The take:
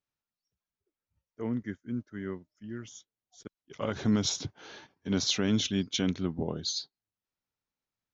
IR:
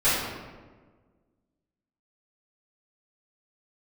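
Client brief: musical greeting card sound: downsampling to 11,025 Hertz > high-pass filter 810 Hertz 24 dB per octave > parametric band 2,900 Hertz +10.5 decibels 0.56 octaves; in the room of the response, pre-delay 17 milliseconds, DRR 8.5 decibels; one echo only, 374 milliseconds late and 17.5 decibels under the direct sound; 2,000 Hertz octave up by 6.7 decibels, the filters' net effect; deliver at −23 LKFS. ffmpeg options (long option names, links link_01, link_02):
-filter_complex "[0:a]equalizer=frequency=2000:width_type=o:gain=4,aecho=1:1:374:0.133,asplit=2[link_01][link_02];[1:a]atrim=start_sample=2205,adelay=17[link_03];[link_02][link_03]afir=irnorm=-1:irlink=0,volume=-25dB[link_04];[link_01][link_04]amix=inputs=2:normalize=0,aresample=11025,aresample=44100,highpass=frequency=810:width=0.5412,highpass=frequency=810:width=1.3066,equalizer=frequency=2900:width_type=o:width=0.56:gain=10.5,volume=6.5dB"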